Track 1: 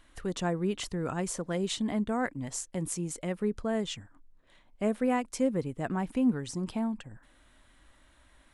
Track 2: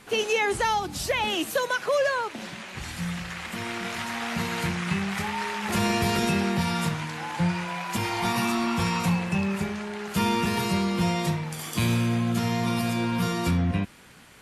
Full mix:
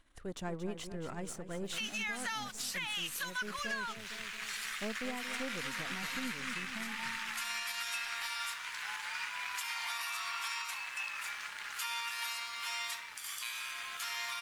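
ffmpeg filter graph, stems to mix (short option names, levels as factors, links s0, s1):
-filter_complex "[0:a]aeval=exprs='if(lt(val(0),0),0.447*val(0),val(0))':c=same,volume=0.501,asplit=2[s0][s1];[s1]volume=0.299[s2];[1:a]highpass=f=1200:w=0.5412,highpass=f=1200:w=1.3066,aeval=exprs='sgn(val(0))*max(abs(val(0))-0.00251,0)':c=same,adelay=1650,volume=1.06[s3];[s2]aecho=0:1:228|456|684|912|1140|1368|1596|1824:1|0.52|0.27|0.141|0.0731|0.038|0.0198|0.0103[s4];[s0][s3][s4]amix=inputs=3:normalize=0,alimiter=level_in=1.5:limit=0.0631:level=0:latency=1:release=479,volume=0.668"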